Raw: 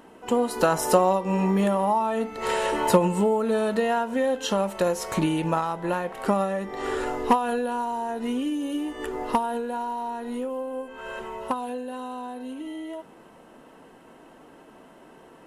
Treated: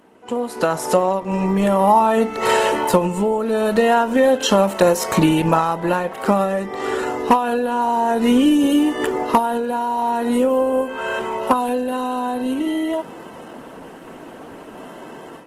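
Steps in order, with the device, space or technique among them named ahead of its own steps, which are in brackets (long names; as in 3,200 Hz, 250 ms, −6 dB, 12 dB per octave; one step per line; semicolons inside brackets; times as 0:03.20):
0:07.37–0:08.09: high-shelf EQ 9,800 Hz −7.5 dB
video call (high-pass filter 100 Hz 12 dB per octave; automatic gain control gain up to 15 dB; level −1 dB; Opus 16 kbit/s 48,000 Hz)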